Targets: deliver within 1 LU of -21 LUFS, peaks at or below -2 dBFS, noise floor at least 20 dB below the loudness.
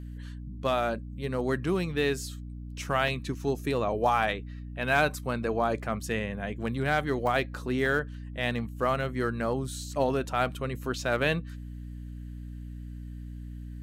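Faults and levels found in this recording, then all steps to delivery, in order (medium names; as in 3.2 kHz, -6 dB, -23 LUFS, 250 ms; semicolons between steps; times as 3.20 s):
dropouts 3; longest dropout 1.1 ms; hum 60 Hz; highest harmonic 300 Hz; hum level -37 dBFS; loudness -29.5 LUFS; peak level -11.5 dBFS; loudness target -21.0 LUFS
-> interpolate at 3.08/7.27/7.86 s, 1.1 ms; hum notches 60/120/180/240/300 Hz; trim +8.5 dB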